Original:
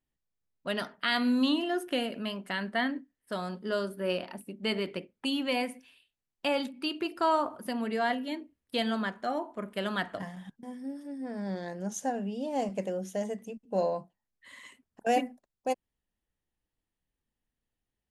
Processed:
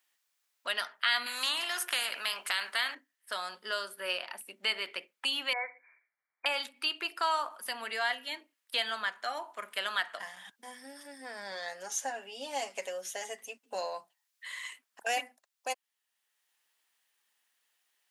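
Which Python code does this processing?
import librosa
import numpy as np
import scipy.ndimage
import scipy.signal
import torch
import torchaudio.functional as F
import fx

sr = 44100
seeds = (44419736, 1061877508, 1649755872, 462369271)

y = fx.spectral_comp(x, sr, ratio=2.0, at=(1.26, 2.95))
y = fx.brickwall_bandpass(y, sr, low_hz=280.0, high_hz=2400.0, at=(5.53, 6.46))
y = fx.comb(y, sr, ms=7.3, depth=0.65, at=(11.51, 13.75))
y = scipy.signal.sosfilt(scipy.signal.butter(2, 1200.0, 'highpass', fs=sr, output='sos'), y)
y = fx.band_squash(y, sr, depth_pct=40)
y = F.gain(torch.from_numpy(y), 4.5).numpy()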